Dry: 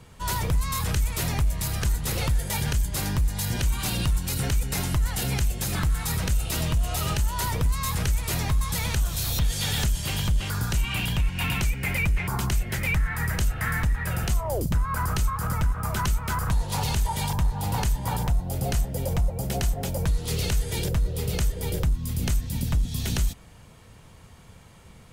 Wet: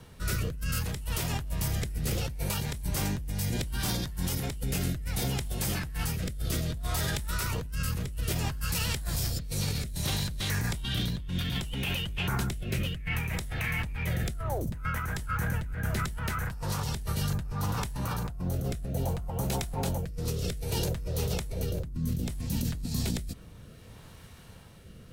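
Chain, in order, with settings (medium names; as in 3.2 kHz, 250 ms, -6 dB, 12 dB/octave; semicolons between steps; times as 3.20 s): formant shift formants +4 st; rotary cabinet horn 0.65 Hz; compressor with a negative ratio -30 dBFS, ratio -1; trim -1.5 dB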